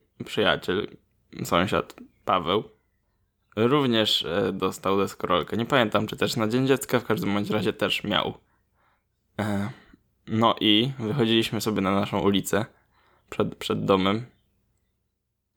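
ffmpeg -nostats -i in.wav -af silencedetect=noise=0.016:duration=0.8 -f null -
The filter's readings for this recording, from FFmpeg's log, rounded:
silence_start: 2.66
silence_end: 3.57 | silence_duration: 0.91
silence_start: 8.35
silence_end: 9.39 | silence_duration: 1.03
silence_start: 14.24
silence_end: 15.56 | silence_duration: 1.32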